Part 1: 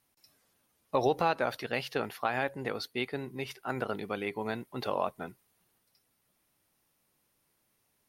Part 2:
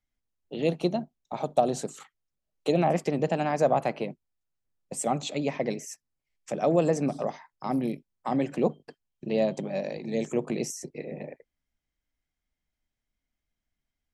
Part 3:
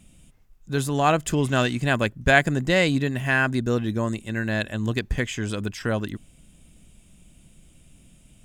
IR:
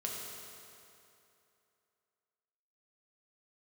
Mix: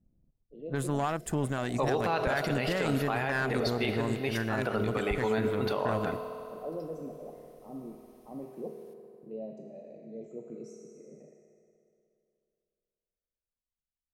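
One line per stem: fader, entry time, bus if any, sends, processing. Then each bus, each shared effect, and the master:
+1.5 dB, 0.85 s, no bus, send -5 dB, dry
-18.0 dB, 0.00 s, bus A, send -4 dB, formant sharpening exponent 1.5; low-pass opened by the level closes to 1400 Hz, open at -25 dBFS
+2.0 dB, 0.00 s, bus A, no send, band shelf 3900 Hz -8.5 dB; power-law curve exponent 1.4
bus A: 0.0 dB, low-pass opened by the level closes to 540 Hz, open at -23.5 dBFS; limiter -14 dBFS, peak gain reduction 11.5 dB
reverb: on, RT60 2.8 s, pre-delay 4 ms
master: limiter -18.5 dBFS, peak gain reduction 10 dB

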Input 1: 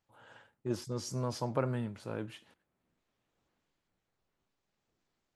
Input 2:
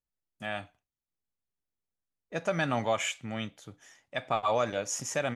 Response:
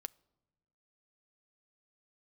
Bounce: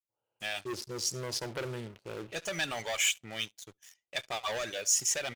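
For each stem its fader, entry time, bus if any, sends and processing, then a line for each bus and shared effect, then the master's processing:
-12.5 dB, 0.00 s, send -5.5 dB, echo send -19.5 dB, Wiener smoothing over 25 samples; AGC gain up to 9.5 dB
-6.0 dB, 0.00 s, send -8 dB, echo send -22 dB, reverb removal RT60 0.66 s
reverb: on, pre-delay 6 ms
echo: echo 70 ms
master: EQ curve 260 Hz 0 dB, 370 Hz +14 dB, 1200 Hz +1 dB, 2700 Hz +9 dB; sample leveller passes 3; passive tone stack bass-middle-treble 5-5-5

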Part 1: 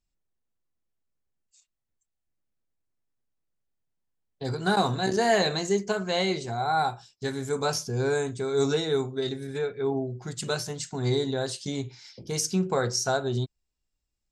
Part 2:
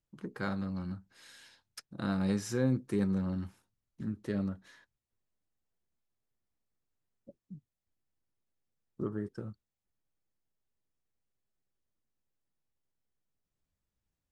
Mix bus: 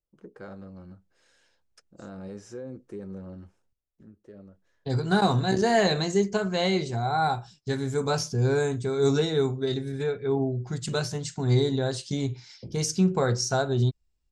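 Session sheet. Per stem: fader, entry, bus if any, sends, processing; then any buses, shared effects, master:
-0.5 dB, 0.45 s, muted 3.73–4.45, no send, low shelf 200 Hz +9 dB
3.75 s 0 dB -> 4.16 s -7.5 dB, 0.00 s, no send, graphic EQ 125/250/500/1000/2000/4000 Hz -10/-7/+4/-7/-7/-11 dB; limiter -30 dBFS, peak gain reduction 7 dB; LPF 6200 Hz 12 dB/oct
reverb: off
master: LPF 8900 Hz 12 dB/oct

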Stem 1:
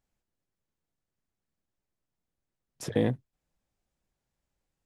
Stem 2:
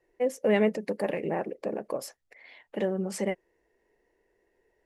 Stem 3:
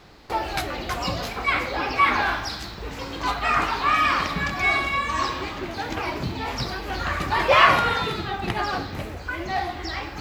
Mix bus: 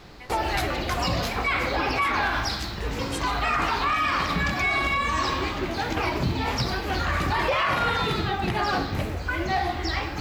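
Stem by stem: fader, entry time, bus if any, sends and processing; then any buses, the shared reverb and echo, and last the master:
-13.5 dB, 0.00 s, no send, dry
+1.0 dB, 0.00 s, no send, steep high-pass 940 Hz
+2.5 dB, 0.00 s, no send, dry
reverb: off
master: low shelf 210 Hz +4 dB; de-hum 49.28 Hz, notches 40; limiter -15.5 dBFS, peak gain reduction 14.5 dB

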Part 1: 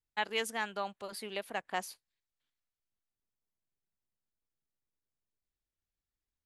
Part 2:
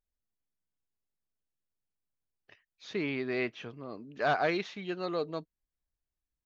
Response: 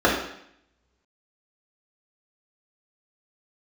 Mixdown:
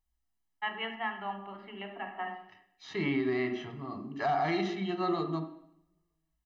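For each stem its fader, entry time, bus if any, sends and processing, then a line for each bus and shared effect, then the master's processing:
-5.0 dB, 0.45 s, send -20 dB, Chebyshev band-pass 140–2900 Hz, order 4; auto duck -13 dB, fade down 0.75 s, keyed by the second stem
-5.5 dB, 0.00 s, send -22.5 dB, harmonic-percussive split harmonic +8 dB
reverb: on, RT60 0.70 s, pre-delay 3 ms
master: comb 1 ms, depth 90%; limiter -21.5 dBFS, peak gain reduction 9 dB

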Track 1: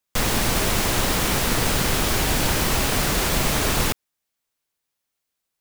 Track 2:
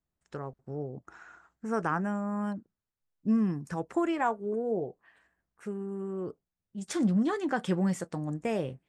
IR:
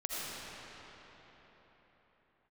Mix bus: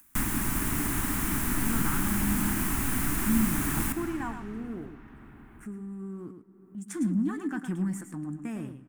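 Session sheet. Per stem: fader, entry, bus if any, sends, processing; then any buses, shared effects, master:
0.0 dB, 0.00 s, send -19.5 dB, no echo send, high shelf 4900 Hz -4.5 dB; auto duck -10 dB, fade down 0.25 s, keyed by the second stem
-8.0 dB, 0.00 s, send -23.5 dB, echo send -8 dB, sample leveller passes 1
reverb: on, RT60 4.4 s, pre-delay 40 ms
echo: echo 0.108 s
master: EQ curve 150 Hz 0 dB, 290 Hz +7 dB, 500 Hz -18 dB, 960 Hz -2 dB, 1700 Hz +2 dB, 4700 Hz -5 dB, 9400 Hz +8 dB; upward compressor, threshold -41 dBFS; bell 3800 Hz -7 dB 1.4 oct

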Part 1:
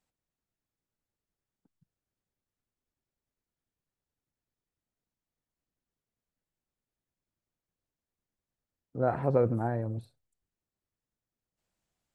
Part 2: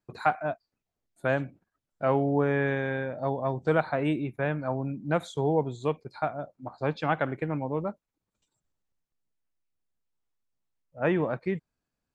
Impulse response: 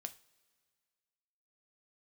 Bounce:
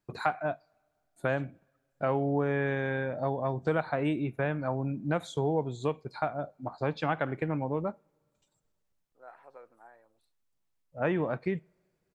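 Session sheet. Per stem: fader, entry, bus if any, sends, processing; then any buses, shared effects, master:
-14.0 dB, 0.20 s, no send, HPF 990 Hz 12 dB/oct
0.0 dB, 0.00 s, send -6 dB, compressor 2:1, threshold -31 dBFS, peak gain reduction 7.5 dB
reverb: on, pre-delay 3 ms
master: dry

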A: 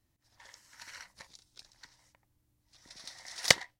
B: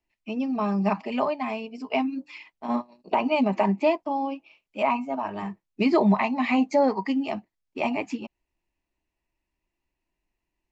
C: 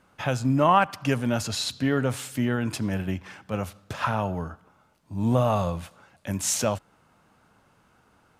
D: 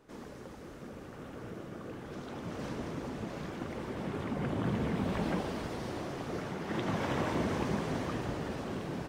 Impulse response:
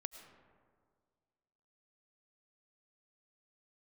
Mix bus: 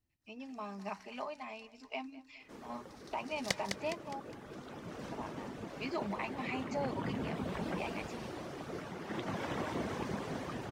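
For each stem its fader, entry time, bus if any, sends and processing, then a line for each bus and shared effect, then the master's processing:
-13.5 dB, 0.00 s, no send, echo send -5.5 dB, low shelf 420 Hz +10.5 dB
-14.5 dB, 0.00 s, muted 4.2–5.12, no send, echo send -19.5 dB, tilt +2 dB/oct
off
-3.0 dB, 2.40 s, no send, echo send -10.5 dB, reverb removal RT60 0.59 s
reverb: off
echo: feedback echo 0.206 s, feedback 43%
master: low shelf 190 Hz -5 dB

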